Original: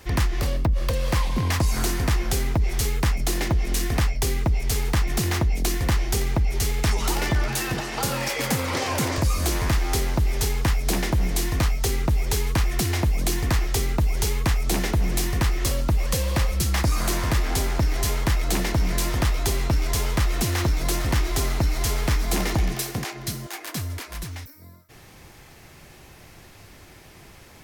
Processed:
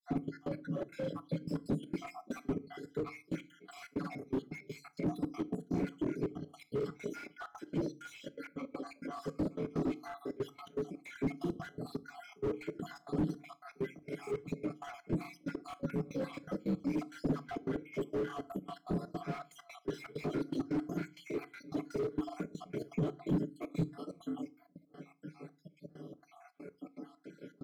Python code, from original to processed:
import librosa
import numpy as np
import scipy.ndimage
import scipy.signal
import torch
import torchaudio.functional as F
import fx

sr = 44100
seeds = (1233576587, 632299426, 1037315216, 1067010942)

y = fx.spec_dropout(x, sr, seeds[0], share_pct=70)
y = scipy.signal.sosfilt(scipy.signal.butter(8, 170.0, 'highpass', fs=sr, output='sos'), y)
y = y + 0.68 * np.pad(y, (int(7.0 * sr / 1000.0), 0))[:len(y)]
y = fx.over_compress(y, sr, threshold_db=-34.0, ratio=-0.5)
y = fx.granulator(y, sr, seeds[1], grain_ms=174.0, per_s=20.0, spray_ms=33.0, spread_st=0)
y = fx.step_gate(y, sr, bpm=163, pattern='xx.x.x.xx.x', floor_db=-24.0, edge_ms=4.5)
y = np.convolve(y, np.full(48, 1.0 / 48))[:len(y)]
y = fx.rev_fdn(y, sr, rt60_s=0.34, lf_ratio=1.4, hf_ratio=0.9, size_ms=20.0, drr_db=14.5)
y = fx.slew_limit(y, sr, full_power_hz=3.0)
y = F.gain(torch.from_numpy(y), 11.5).numpy()